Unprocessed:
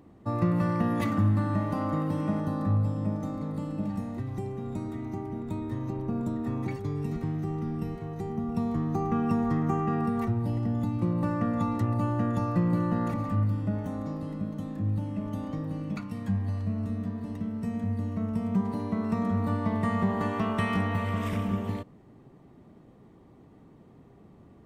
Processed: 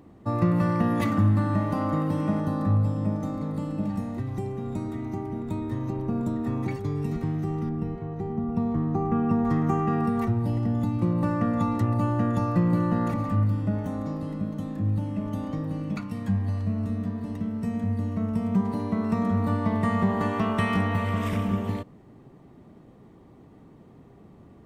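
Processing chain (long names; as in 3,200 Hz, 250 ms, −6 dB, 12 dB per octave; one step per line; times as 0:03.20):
0:07.69–0:09.45: low-pass filter 1,400 Hz 6 dB per octave
level +3 dB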